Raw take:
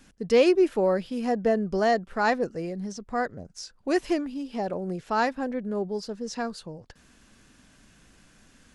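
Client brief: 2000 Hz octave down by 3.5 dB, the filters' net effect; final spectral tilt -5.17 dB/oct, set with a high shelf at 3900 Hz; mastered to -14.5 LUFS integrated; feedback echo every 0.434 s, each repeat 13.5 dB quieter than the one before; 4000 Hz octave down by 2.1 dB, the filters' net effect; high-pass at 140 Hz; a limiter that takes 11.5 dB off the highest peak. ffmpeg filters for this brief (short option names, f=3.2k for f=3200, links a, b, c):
-af "highpass=140,equalizer=f=2k:t=o:g=-4.5,highshelf=f=3.9k:g=3.5,equalizer=f=4k:t=o:g=-4,alimiter=limit=-21.5dB:level=0:latency=1,aecho=1:1:434|868:0.211|0.0444,volume=17dB"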